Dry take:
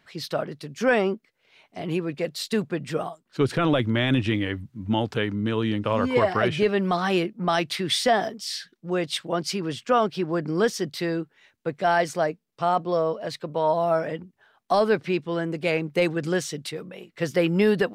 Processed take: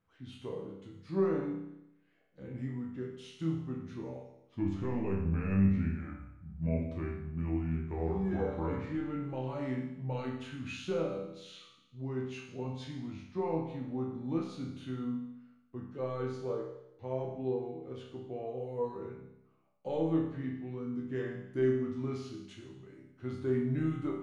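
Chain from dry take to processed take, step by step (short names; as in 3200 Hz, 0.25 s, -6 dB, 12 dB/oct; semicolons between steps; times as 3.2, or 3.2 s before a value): resonator bank F2 major, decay 0.64 s; speed mistake 45 rpm record played at 33 rpm; tilt shelf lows +6 dB, about 660 Hz; gain +1.5 dB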